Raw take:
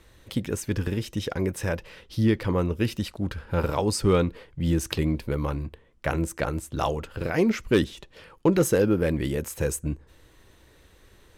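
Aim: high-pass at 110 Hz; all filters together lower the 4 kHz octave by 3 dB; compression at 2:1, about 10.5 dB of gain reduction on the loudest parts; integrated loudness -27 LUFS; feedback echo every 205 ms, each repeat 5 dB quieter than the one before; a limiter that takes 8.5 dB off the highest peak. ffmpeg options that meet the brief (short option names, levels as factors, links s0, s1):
-af "highpass=110,equalizer=f=4000:t=o:g=-4,acompressor=threshold=0.0158:ratio=2,alimiter=level_in=1.12:limit=0.0631:level=0:latency=1,volume=0.891,aecho=1:1:205|410|615|820|1025|1230|1435:0.562|0.315|0.176|0.0988|0.0553|0.031|0.0173,volume=2.99"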